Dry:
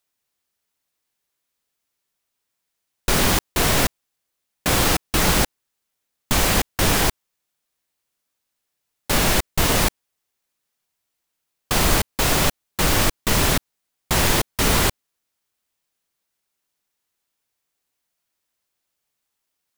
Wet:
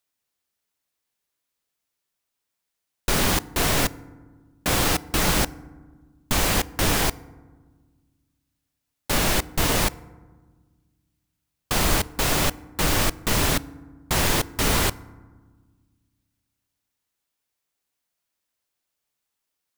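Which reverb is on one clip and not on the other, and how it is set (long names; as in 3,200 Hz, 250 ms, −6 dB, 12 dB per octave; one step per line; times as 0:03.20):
feedback delay network reverb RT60 1.4 s, low-frequency decay 1.6×, high-frequency decay 0.4×, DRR 18.5 dB
level −3 dB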